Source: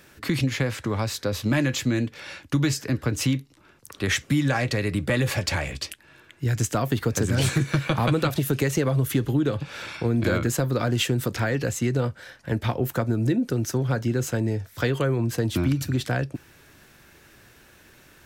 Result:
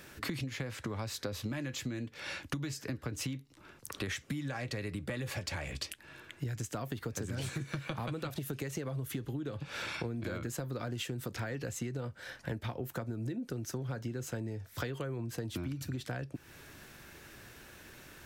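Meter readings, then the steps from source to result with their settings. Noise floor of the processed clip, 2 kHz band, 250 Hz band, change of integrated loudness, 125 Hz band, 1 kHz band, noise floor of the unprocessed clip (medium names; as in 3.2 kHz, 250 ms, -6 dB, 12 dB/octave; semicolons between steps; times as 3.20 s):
-58 dBFS, -12.5 dB, -14.5 dB, -14.0 dB, -14.5 dB, -13.0 dB, -54 dBFS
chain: compression 8:1, threshold -35 dBFS, peak gain reduction 17.5 dB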